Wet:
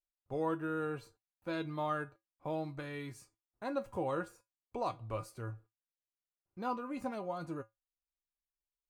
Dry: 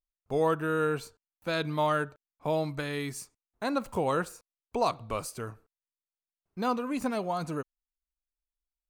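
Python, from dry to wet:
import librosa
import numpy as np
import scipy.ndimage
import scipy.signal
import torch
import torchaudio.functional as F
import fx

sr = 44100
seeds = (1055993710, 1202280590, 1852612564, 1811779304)

y = fx.high_shelf(x, sr, hz=2600.0, db=-10.0)
y = fx.comb_fb(y, sr, f0_hz=110.0, decay_s=0.16, harmonics='odd', damping=0.0, mix_pct=80)
y = F.gain(torch.from_numpy(y), 1.5).numpy()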